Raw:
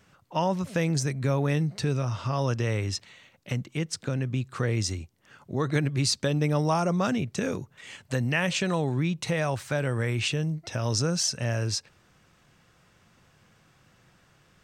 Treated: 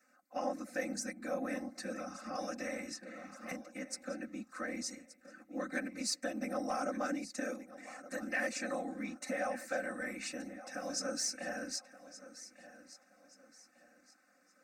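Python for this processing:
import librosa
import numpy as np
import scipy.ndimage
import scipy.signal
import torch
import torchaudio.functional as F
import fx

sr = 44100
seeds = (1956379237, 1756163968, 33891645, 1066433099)

y = fx.whisperise(x, sr, seeds[0])
y = scipy.signal.sosfilt(scipy.signal.butter(2, 360.0, 'highpass', fs=sr, output='sos'), y)
y = fx.fixed_phaser(y, sr, hz=640.0, stages=8)
y = fx.echo_feedback(y, sr, ms=1174, feedback_pct=33, wet_db=-16)
y = 10.0 ** (-17.5 / 20.0) * np.tanh(y / 10.0 ** (-17.5 / 20.0))
y = y + 0.87 * np.pad(y, (int(3.9 * sr / 1000.0), 0))[:len(y)]
y = fx.band_squash(y, sr, depth_pct=70, at=(2.35, 3.52))
y = y * librosa.db_to_amplitude(-7.5)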